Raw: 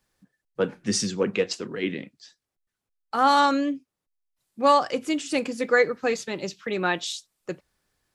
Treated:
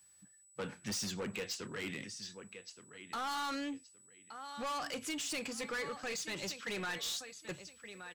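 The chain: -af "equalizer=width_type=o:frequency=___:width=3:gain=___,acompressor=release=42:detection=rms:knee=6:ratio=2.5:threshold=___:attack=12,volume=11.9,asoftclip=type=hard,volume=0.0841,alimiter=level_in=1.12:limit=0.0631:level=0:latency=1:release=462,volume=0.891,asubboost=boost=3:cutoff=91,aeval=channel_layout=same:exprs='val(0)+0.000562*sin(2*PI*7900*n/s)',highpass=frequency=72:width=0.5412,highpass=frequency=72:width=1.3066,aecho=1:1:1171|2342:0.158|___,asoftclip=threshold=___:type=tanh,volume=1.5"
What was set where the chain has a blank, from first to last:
370, -11.5, 0.0282, 0.0365, 0.0119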